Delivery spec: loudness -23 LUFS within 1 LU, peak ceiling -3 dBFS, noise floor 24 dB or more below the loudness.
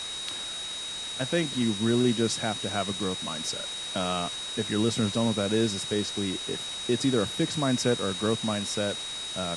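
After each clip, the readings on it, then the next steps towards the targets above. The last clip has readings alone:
steady tone 3.8 kHz; tone level -34 dBFS; noise floor -36 dBFS; noise floor target -52 dBFS; loudness -28.0 LUFS; peak level -12.5 dBFS; loudness target -23.0 LUFS
-> band-stop 3.8 kHz, Q 30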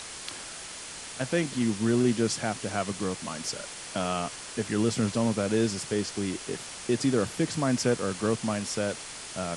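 steady tone not found; noise floor -41 dBFS; noise floor target -53 dBFS
-> noise reduction 12 dB, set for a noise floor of -41 dBFS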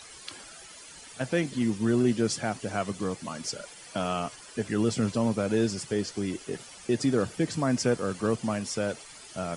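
noise floor -48 dBFS; noise floor target -53 dBFS
-> noise reduction 6 dB, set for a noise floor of -48 dBFS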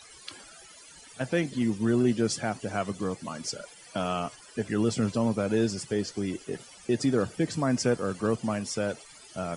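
noise floor -51 dBFS; noise floor target -53 dBFS
-> noise reduction 6 dB, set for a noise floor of -51 dBFS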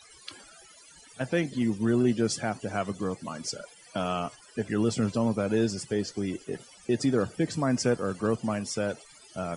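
noise floor -54 dBFS; loudness -29.0 LUFS; peak level -13.5 dBFS; loudness target -23.0 LUFS
-> trim +6 dB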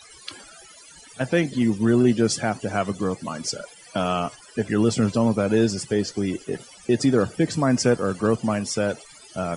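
loudness -23.0 LUFS; peak level -7.5 dBFS; noise floor -48 dBFS

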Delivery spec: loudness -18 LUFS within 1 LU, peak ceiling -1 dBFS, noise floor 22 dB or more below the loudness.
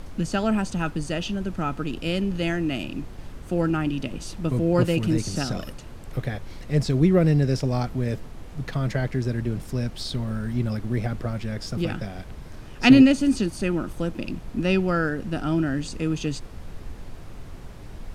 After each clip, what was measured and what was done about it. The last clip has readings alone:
noise floor -40 dBFS; noise floor target -47 dBFS; loudness -24.5 LUFS; peak level -3.0 dBFS; loudness target -18.0 LUFS
-> noise print and reduce 7 dB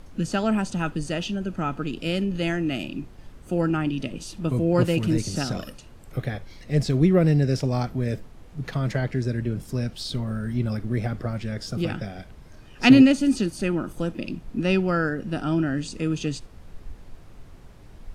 noise floor -46 dBFS; noise floor target -47 dBFS
-> noise print and reduce 6 dB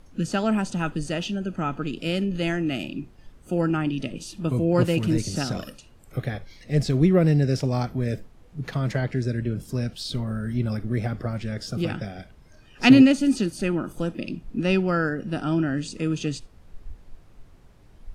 noise floor -52 dBFS; loudness -24.5 LUFS; peak level -3.0 dBFS; loudness target -18.0 LUFS
-> trim +6.5 dB; peak limiter -1 dBFS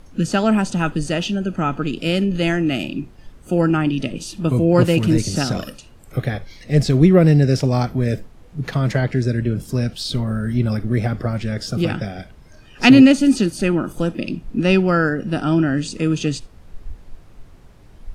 loudness -18.5 LUFS; peak level -1.0 dBFS; noise floor -45 dBFS

